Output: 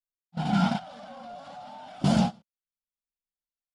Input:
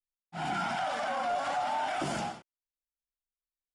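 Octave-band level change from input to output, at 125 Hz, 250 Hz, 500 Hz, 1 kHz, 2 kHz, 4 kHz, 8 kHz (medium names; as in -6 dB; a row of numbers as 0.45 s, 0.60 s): +15.0 dB, +14.5 dB, -1.5 dB, -3.0 dB, -4.5 dB, +2.0 dB, 0.0 dB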